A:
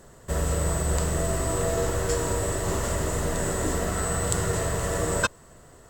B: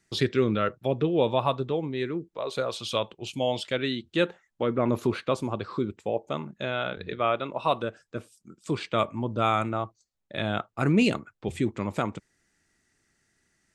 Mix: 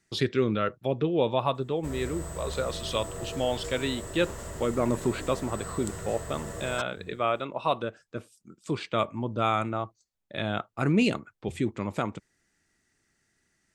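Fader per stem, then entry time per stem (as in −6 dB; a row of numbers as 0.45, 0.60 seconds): −12.0, −1.5 decibels; 1.55, 0.00 seconds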